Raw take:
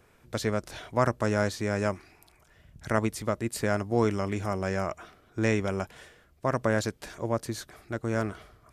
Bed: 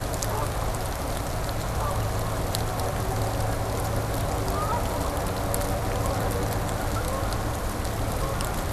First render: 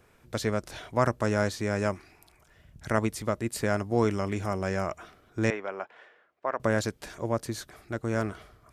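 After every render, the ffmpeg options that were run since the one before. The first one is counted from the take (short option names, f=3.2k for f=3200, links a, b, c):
-filter_complex "[0:a]asettb=1/sr,asplit=3[a][b][c];[a]atrim=end=5.504[d];[b]atrim=start=5.5:end=6.6,asetpts=PTS-STARTPTS,afade=t=in:d=0.004:c=qsin,afade=t=out:st=1.096:d=0.004:c=qsin,highpass=540,lowpass=2.1k[e];[c]atrim=start=6.596[f];[d][e]acrossfade=d=0.004:c1=hsin:c2=qsin[g];[g][f]acrossfade=d=0.004:c1=qsin:c2=hsin"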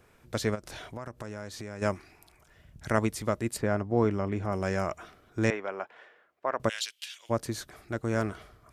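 -filter_complex "[0:a]asplit=3[a][b][c];[a]afade=t=out:st=0.54:d=0.02[d];[b]acompressor=threshold=-37dB:ratio=5:attack=3.2:release=140:knee=1:detection=peak,afade=t=in:st=0.54:d=0.02,afade=t=out:st=1.81:d=0.02[e];[c]afade=t=in:st=1.81:d=0.02[f];[d][e][f]amix=inputs=3:normalize=0,asplit=3[g][h][i];[g]afade=t=out:st=3.56:d=0.02[j];[h]lowpass=f=1.4k:p=1,afade=t=in:st=3.56:d=0.02,afade=t=out:st=4.52:d=0.02[k];[i]afade=t=in:st=4.52:d=0.02[l];[j][k][l]amix=inputs=3:normalize=0,asplit=3[m][n][o];[m]afade=t=out:st=6.68:d=0.02[p];[n]highpass=f=3k:t=q:w=5,afade=t=in:st=6.68:d=0.02,afade=t=out:st=7.29:d=0.02[q];[o]afade=t=in:st=7.29:d=0.02[r];[p][q][r]amix=inputs=3:normalize=0"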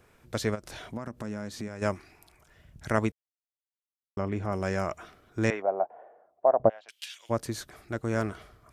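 -filter_complex "[0:a]asettb=1/sr,asplit=3[a][b][c];[a]atrim=end=0.874[d];[b]atrim=start=0.87:end=1.68,asetpts=PTS-STARTPTS,afade=t=in:d=0.004:c=qsin,afade=t=out:st=0.806:d=0.004:c=qsin,equalizer=f=220:t=o:w=0.77:g=9[e];[c]atrim=start=1.676[f];[d][e]acrossfade=d=0.004:c1=hsin:c2=qsin[g];[g][f]acrossfade=d=0.004:c1=qsin:c2=hsin,asettb=1/sr,asplit=3[h][i][j];[h]atrim=end=5.624[k];[i]atrim=start=5.62:end=6.89,asetpts=PTS-STARTPTS,afade=t=in:d=0.004:c=qsin,afade=t=out:st=1.266:d=0.004:c=qsin,lowpass=f=710:t=q:w=5.3[l];[j]atrim=start=6.886[m];[k][l]acrossfade=d=0.004:c1=hsin:c2=qsin[n];[n][m]acrossfade=d=0.004:c1=qsin:c2=hsin,asplit=3[o][p][q];[o]atrim=end=3.12,asetpts=PTS-STARTPTS,afade=t=out:st=3.116:d=0.004:c=hsin[r];[p]atrim=start=3.12:end=4.17,asetpts=PTS-STARTPTS,volume=0[s];[q]atrim=start=4.17,asetpts=PTS-STARTPTS,afade=t=in:d=0.004:c=hsin[t];[r][s][t]concat=n=3:v=0:a=1"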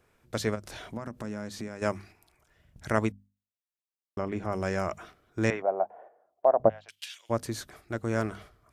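-af "agate=range=-6dB:threshold=-50dB:ratio=16:detection=peak,bandreject=f=50:t=h:w=6,bandreject=f=100:t=h:w=6,bandreject=f=150:t=h:w=6,bandreject=f=200:t=h:w=6,bandreject=f=250:t=h:w=6"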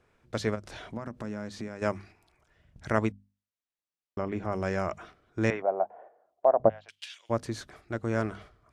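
-af "lowpass=11k,highshelf=f=8.1k:g=-11.5"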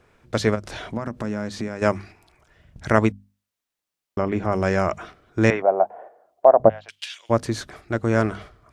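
-af "volume=9dB,alimiter=limit=-1dB:level=0:latency=1"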